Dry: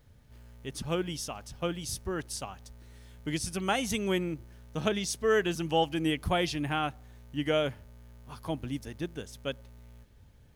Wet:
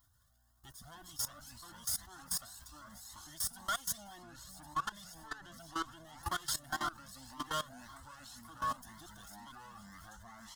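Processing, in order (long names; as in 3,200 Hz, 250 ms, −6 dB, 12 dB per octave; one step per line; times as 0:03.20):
lower of the sound and its delayed copy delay 0.59 ms
spectral tilt +2 dB per octave
comb filter 2.8 ms, depth 43%
delay with pitch and tempo change per echo 110 ms, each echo −4 semitones, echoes 3, each echo −6 dB
0:04.04–0:06.23: low-pass filter 2,700 Hz 6 dB per octave
soft clipping −25.5 dBFS, distortion −14 dB
phaser with its sweep stopped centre 1,000 Hz, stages 4
feedback echo with a high-pass in the loop 1,098 ms, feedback 67%, high-pass 990 Hz, level −16 dB
output level in coarse steps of 18 dB
low-shelf EQ 90 Hz −8 dB
flanger whose copies keep moving one way rising 1.9 Hz
level +6.5 dB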